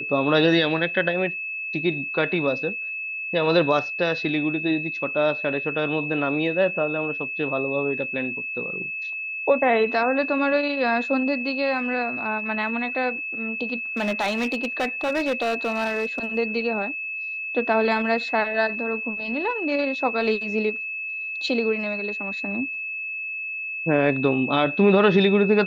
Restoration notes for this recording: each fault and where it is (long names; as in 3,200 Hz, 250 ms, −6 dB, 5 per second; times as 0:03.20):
whistle 2,600 Hz −28 dBFS
0:13.97–0:16.38: clipping −19.5 dBFS